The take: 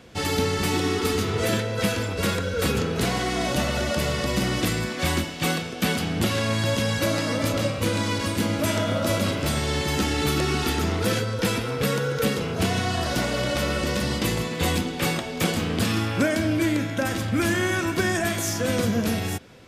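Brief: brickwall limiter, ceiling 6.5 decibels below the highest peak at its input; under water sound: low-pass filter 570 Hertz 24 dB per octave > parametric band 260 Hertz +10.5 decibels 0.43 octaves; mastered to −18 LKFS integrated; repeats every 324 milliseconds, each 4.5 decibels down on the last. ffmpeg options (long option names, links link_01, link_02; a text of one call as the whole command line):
ffmpeg -i in.wav -af "alimiter=limit=-17.5dB:level=0:latency=1,lowpass=frequency=570:width=0.5412,lowpass=frequency=570:width=1.3066,equalizer=frequency=260:width_type=o:width=0.43:gain=10.5,aecho=1:1:324|648|972|1296|1620|1944|2268|2592|2916:0.596|0.357|0.214|0.129|0.0772|0.0463|0.0278|0.0167|0.01,volume=6dB" out.wav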